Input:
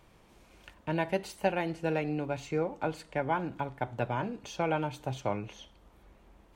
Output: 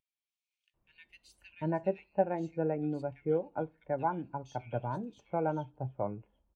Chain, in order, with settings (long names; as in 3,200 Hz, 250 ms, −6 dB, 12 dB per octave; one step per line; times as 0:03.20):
multiband delay without the direct sound highs, lows 740 ms, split 2,200 Hz
every bin expanded away from the loudest bin 1.5 to 1